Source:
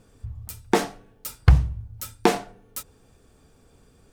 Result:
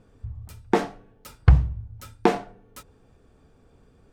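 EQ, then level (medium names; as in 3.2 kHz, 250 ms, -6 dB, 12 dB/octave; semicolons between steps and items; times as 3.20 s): low-pass 2 kHz 6 dB/octave; 0.0 dB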